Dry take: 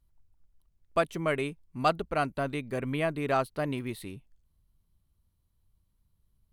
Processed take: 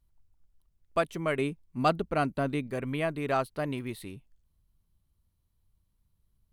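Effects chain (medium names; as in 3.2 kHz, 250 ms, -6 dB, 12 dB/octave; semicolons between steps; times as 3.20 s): 1.37–2.67 s: dynamic bell 220 Hz, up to +6 dB, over -43 dBFS, Q 0.72; trim -1 dB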